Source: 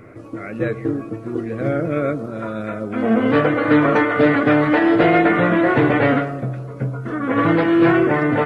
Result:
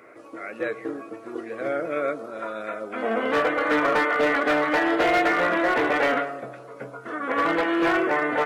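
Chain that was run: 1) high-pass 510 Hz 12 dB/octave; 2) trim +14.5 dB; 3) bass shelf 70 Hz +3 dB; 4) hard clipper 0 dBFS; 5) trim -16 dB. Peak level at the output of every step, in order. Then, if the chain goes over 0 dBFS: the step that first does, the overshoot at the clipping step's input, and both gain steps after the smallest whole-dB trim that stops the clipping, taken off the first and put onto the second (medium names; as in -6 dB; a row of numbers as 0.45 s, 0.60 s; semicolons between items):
-6.5 dBFS, +8.0 dBFS, +8.0 dBFS, 0.0 dBFS, -16.0 dBFS; step 2, 8.0 dB; step 2 +6.5 dB, step 5 -8 dB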